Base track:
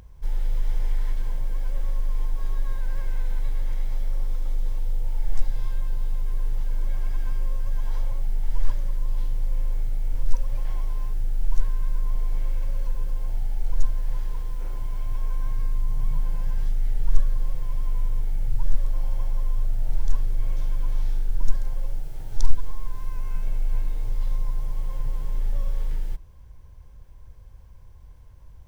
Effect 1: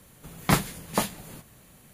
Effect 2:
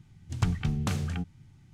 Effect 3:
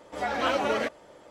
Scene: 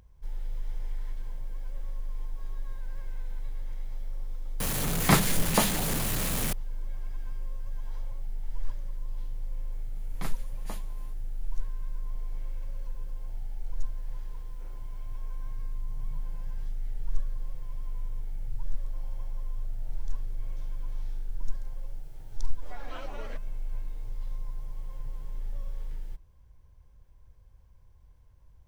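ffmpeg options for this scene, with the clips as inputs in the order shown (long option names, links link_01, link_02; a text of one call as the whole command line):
ffmpeg -i bed.wav -i cue0.wav -i cue1.wav -i cue2.wav -filter_complex "[1:a]asplit=2[link_01][link_02];[0:a]volume=-10dB[link_03];[link_01]aeval=exprs='val(0)+0.5*0.0631*sgn(val(0))':channel_layout=same,atrim=end=1.93,asetpts=PTS-STARTPTS,volume=-1dB,afade=type=in:duration=0.004:curve=hsin,afade=type=out:start_time=1.926:duration=0.004:curve=hsin,adelay=4600[link_04];[link_02]atrim=end=1.93,asetpts=PTS-STARTPTS,volume=-17.5dB,afade=type=in:duration=0.004:curve=hsin,afade=type=out:start_time=1.926:duration=0.004:curve=hsin,adelay=9720[link_05];[3:a]atrim=end=1.3,asetpts=PTS-STARTPTS,volume=-17dB,afade=type=in:duration=0.004:curve=hsin,afade=type=out:start_time=1.296:duration=0.004:curve=hsin,adelay=22490[link_06];[link_03][link_04][link_05][link_06]amix=inputs=4:normalize=0" out.wav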